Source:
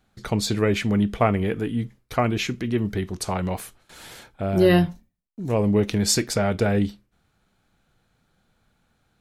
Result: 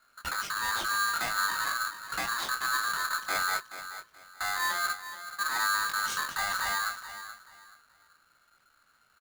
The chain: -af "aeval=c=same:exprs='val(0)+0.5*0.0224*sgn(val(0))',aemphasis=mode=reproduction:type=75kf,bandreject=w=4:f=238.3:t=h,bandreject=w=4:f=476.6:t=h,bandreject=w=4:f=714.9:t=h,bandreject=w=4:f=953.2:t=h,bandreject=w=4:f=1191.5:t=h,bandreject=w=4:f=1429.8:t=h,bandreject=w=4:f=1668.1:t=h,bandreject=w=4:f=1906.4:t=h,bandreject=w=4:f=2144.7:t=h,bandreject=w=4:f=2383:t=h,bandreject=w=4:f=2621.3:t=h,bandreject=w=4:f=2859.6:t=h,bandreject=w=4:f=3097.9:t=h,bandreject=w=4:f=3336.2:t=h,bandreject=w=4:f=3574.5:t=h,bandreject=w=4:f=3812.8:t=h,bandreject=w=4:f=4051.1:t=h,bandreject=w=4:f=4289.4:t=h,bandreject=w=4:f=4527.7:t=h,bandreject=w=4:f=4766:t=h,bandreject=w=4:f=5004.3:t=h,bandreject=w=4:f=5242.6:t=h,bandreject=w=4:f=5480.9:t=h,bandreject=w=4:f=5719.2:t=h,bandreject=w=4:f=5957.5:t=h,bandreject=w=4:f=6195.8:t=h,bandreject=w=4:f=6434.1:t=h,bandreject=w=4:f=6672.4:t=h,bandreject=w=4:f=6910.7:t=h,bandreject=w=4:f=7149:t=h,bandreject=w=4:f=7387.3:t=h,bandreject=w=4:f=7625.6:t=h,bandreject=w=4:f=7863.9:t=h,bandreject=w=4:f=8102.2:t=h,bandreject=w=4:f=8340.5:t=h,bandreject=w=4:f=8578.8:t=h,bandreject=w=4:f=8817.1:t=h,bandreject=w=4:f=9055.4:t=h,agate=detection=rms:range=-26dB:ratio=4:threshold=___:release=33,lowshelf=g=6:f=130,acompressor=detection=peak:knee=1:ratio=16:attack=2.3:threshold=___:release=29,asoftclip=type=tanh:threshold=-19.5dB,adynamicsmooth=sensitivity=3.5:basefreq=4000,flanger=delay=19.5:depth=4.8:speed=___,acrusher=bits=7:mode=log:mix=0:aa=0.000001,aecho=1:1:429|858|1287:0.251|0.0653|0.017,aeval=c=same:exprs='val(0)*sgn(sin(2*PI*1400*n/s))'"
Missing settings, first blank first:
-32dB, -23dB, 0.53